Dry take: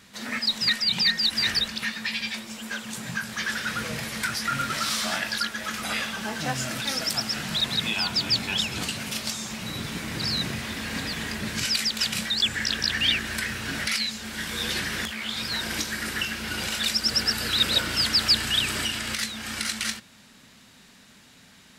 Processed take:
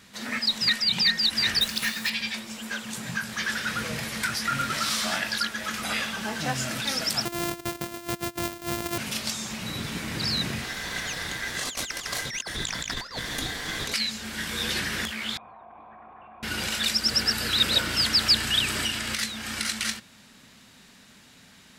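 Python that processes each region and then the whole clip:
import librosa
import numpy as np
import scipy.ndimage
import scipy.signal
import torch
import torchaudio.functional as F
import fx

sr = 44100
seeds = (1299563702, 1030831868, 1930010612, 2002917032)

y = fx.chain(x, sr, fx.high_shelf(hz=6400.0, db=11.0),
    fx.quant_companded(bits=4), at=(1.61, 2.1))
y = fx.chain(y, sr, fx.sample_sort(block=128),
    fx.high_shelf(hz=9400.0, db=8.5),
    fx.over_compress(threshold_db=-32.0, ratio=-0.5), at=(7.25, 8.98))
y = fx.chain(y, sr, fx.ring_mod(carrier_hz=1800.0),
    fx.over_compress(threshold_db=-31.0, ratio=-0.5), at=(10.64, 13.94))
y = fx.chain(y, sr, fx.formant_cascade(vowel='a'),
    fx.env_flatten(amount_pct=100), at=(15.37, 16.43))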